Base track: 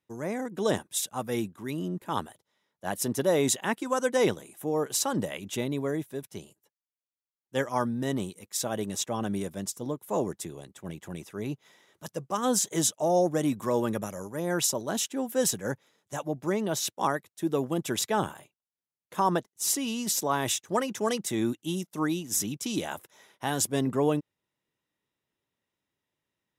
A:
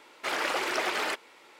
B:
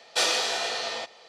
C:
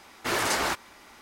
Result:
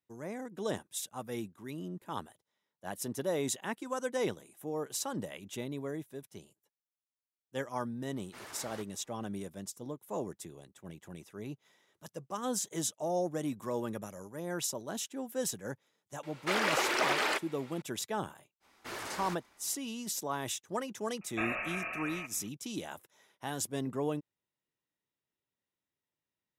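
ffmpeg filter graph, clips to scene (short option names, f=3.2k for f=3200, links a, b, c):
-filter_complex "[3:a]asplit=2[a][b];[0:a]volume=-8.5dB[c];[a]flanger=delay=0.9:depth=7.4:regen=70:speed=1.8:shape=sinusoidal[d];[2:a]lowpass=f=2.6k:t=q:w=0.5098,lowpass=f=2.6k:t=q:w=0.6013,lowpass=f=2.6k:t=q:w=0.9,lowpass=f=2.6k:t=q:w=2.563,afreqshift=-3100[e];[d]atrim=end=1.21,asetpts=PTS-STARTPTS,volume=-17.5dB,afade=t=in:d=0.004:c=hsin,afade=t=out:st=1.206:d=0.004:c=hsin,adelay=8080[f];[1:a]atrim=end=1.59,asetpts=PTS-STARTPTS,volume=-0.5dB,afade=t=in:d=0.004:c=hsin,afade=t=out:st=1.586:d=0.004:c=hsin,adelay=16230[g];[b]atrim=end=1.21,asetpts=PTS-STARTPTS,volume=-14.5dB,afade=t=in:d=0.05,afade=t=out:st=1.16:d=0.05,adelay=820260S[h];[e]atrim=end=1.28,asetpts=PTS-STARTPTS,volume=-7dB,afade=t=in:d=0.004:c=hsin,afade=t=out:st=1.276:d=0.004:c=hsin,adelay=21210[i];[c][f][g][h][i]amix=inputs=5:normalize=0"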